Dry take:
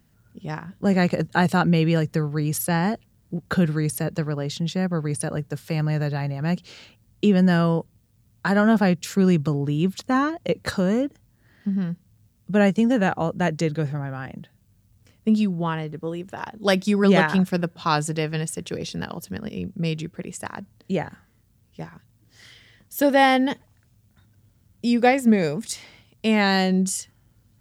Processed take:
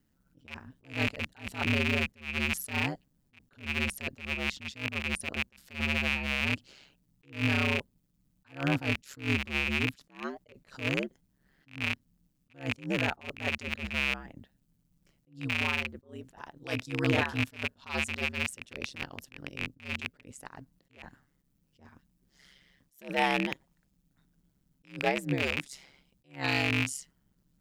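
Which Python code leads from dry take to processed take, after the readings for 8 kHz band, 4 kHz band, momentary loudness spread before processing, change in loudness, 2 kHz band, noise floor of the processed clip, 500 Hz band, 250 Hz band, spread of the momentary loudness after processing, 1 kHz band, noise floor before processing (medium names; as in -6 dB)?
-10.5 dB, -3.0 dB, 15 LU, -8.5 dB, -2.5 dB, -73 dBFS, -13.5 dB, -14.5 dB, 18 LU, -12.5 dB, -61 dBFS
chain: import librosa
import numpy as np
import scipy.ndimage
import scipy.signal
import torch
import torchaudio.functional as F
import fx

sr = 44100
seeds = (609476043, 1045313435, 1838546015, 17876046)

y = fx.rattle_buzz(x, sr, strikes_db=-29.0, level_db=-7.0)
y = y * np.sin(2.0 * np.pi * 69.0 * np.arange(len(y)) / sr)
y = fx.attack_slew(y, sr, db_per_s=190.0)
y = y * librosa.db_to_amplitude(-8.0)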